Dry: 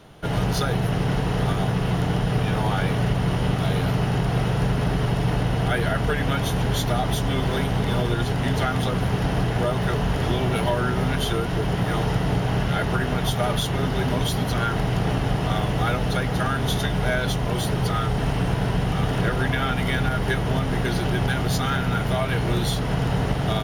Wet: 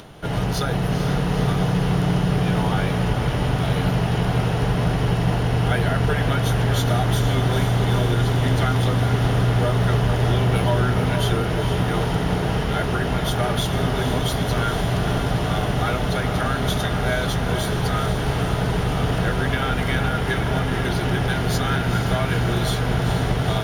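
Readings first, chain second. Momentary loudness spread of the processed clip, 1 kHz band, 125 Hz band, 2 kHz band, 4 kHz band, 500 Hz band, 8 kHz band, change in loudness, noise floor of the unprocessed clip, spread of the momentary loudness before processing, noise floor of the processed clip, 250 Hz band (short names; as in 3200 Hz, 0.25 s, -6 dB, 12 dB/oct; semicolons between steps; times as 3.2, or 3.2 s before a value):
3 LU, +1.5 dB, +2.5 dB, +1.5 dB, +1.5 dB, +2.0 dB, +1.5 dB, +2.0 dB, -25 dBFS, 1 LU, -24 dBFS, +1.5 dB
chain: upward compressor, threshold -36 dBFS; diffused feedback echo 0.462 s, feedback 77%, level -7 dB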